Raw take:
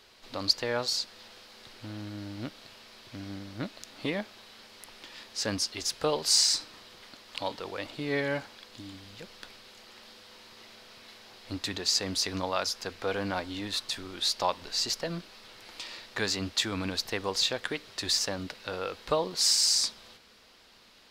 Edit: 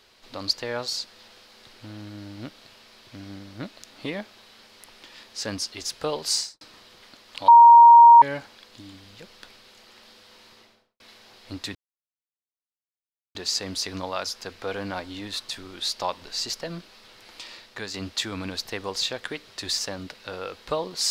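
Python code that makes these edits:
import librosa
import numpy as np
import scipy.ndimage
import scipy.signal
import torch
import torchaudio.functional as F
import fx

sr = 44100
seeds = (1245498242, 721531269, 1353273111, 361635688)

y = fx.studio_fade_out(x, sr, start_s=6.31, length_s=0.3)
y = fx.studio_fade_out(y, sr, start_s=10.49, length_s=0.51)
y = fx.edit(y, sr, fx.bleep(start_s=7.48, length_s=0.74, hz=938.0, db=-6.5),
    fx.insert_silence(at_s=11.75, length_s=1.6),
    fx.fade_out_to(start_s=15.91, length_s=0.43, floor_db=-7.0), tone=tone)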